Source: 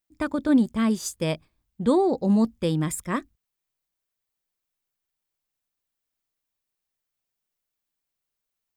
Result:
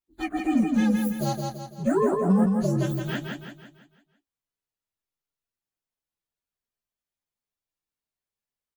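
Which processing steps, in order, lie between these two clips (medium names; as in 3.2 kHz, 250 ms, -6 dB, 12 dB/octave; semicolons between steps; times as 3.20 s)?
frequency axis rescaled in octaves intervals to 126%; feedback delay 167 ms, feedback 45%, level -4 dB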